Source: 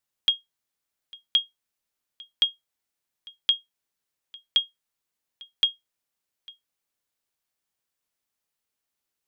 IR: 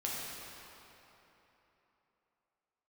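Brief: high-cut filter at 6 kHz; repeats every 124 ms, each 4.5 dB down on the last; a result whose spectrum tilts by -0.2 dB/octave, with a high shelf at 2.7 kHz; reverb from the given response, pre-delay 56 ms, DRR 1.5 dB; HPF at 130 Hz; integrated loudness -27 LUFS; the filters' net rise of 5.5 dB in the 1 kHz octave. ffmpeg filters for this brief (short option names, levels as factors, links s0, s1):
-filter_complex "[0:a]highpass=130,lowpass=6000,equalizer=f=1000:t=o:g=8,highshelf=f=2700:g=-6.5,aecho=1:1:124|248|372|496|620|744|868|992|1116:0.596|0.357|0.214|0.129|0.0772|0.0463|0.0278|0.0167|0.01,asplit=2[s0][s1];[1:a]atrim=start_sample=2205,adelay=56[s2];[s1][s2]afir=irnorm=-1:irlink=0,volume=0.531[s3];[s0][s3]amix=inputs=2:normalize=0,volume=1.26"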